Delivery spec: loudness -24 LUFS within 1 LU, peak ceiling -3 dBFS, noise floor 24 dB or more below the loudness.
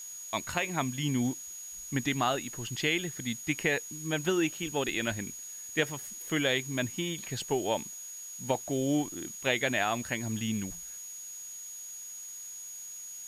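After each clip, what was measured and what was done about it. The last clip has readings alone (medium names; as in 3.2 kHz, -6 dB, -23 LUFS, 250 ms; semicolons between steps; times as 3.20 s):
steady tone 6.7 kHz; tone level -41 dBFS; noise floor -44 dBFS; noise floor target -57 dBFS; loudness -32.5 LUFS; peak level -13.5 dBFS; loudness target -24.0 LUFS
-> band-stop 6.7 kHz, Q 30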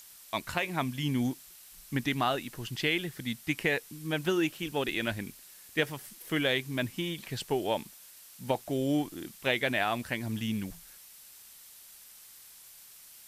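steady tone not found; noise floor -53 dBFS; noise floor target -56 dBFS
-> noise reduction 6 dB, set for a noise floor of -53 dBFS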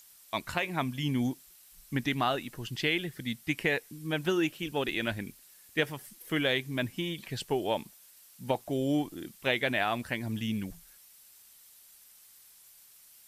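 noise floor -57 dBFS; loudness -32.0 LUFS; peak level -13.0 dBFS; loudness target -24.0 LUFS
-> trim +8 dB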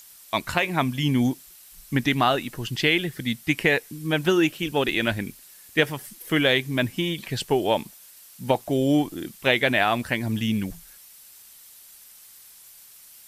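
loudness -24.0 LUFS; peak level -5.0 dBFS; noise floor -49 dBFS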